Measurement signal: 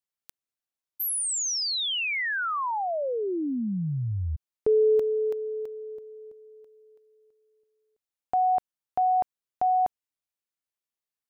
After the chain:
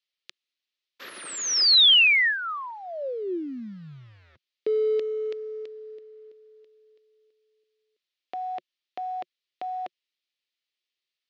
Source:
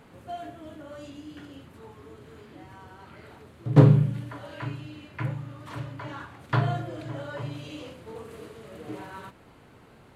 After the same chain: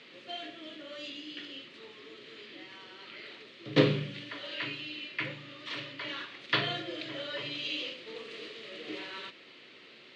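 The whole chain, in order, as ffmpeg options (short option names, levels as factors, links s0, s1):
-af "aexciter=amount=10.2:drive=5:freq=2200,acrusher=bits=6:mode=log:mix=0:aa=0.000001,highpass=f=170:w=0.5412,highpass=f=170:w=1.3066,equalizer=f=180:t=q:w=4:g=-5,equalizer=f=360:t=q:w=4:g=7,equalizer=f=540:t=q:w=4:g=5,equalizer=f=820:t=q:w=4:g=-7,equalizer=f=1300:t=q:w=4:g=6,equalizer=f=1800:t=q:w=4:g=6,lowpass=f=4100:w=0.5412,lowpass=f=4100:w=1.3066,volume=0.473"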